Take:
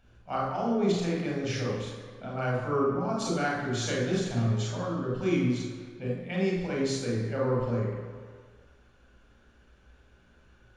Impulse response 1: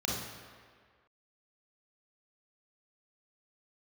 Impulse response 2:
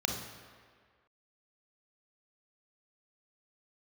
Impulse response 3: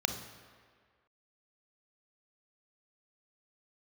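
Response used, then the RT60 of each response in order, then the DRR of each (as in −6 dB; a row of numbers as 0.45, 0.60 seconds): 1; 1.8, 1.8, 1.8 seconds; −4.0, 1.5, 6.0 decibels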